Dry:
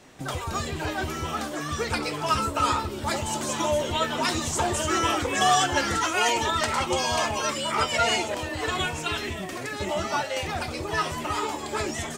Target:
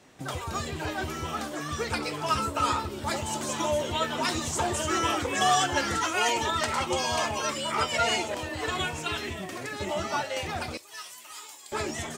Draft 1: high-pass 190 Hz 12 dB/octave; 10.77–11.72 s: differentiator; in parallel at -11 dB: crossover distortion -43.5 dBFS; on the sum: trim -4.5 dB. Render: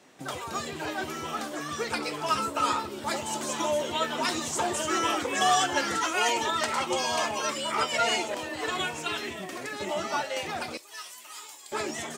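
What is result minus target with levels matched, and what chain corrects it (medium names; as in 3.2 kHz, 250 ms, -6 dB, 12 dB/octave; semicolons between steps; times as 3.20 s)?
125 Hz band -8.5 dB
high-pass 53 Hz 12 dB/octave; 10.77–11.72 s: differentiator; in parallel at -11 dB: crossover distortion -43.5 dBFS; on the sum: trim -4.5 dB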